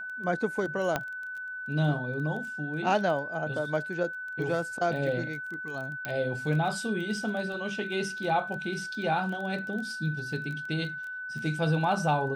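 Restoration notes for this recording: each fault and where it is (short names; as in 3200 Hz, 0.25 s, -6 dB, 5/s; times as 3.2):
crackle 15/s -36 dBFS
tone 1500 Hz -35 dBFS
0.96 pop -13 dBFS
6.05 pop -17 dBFS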